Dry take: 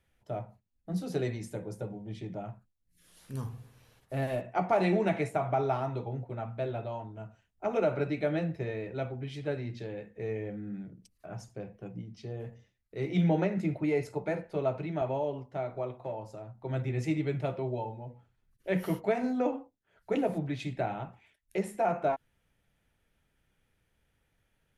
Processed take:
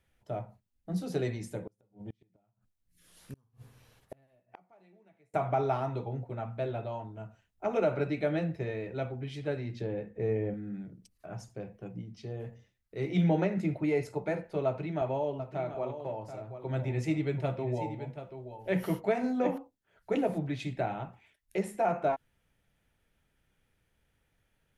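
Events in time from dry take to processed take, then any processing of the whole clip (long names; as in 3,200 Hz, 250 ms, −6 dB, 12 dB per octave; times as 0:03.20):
0:01.63–0:05.34: gate with flip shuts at −32 dBFS, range −35 dB
0:09.81–0:10.54: tilt shelving filter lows +5.5 dB, about 1,500 Hz
0:14.66–0:19.58: single-tap delay 733 ms −10.5 dB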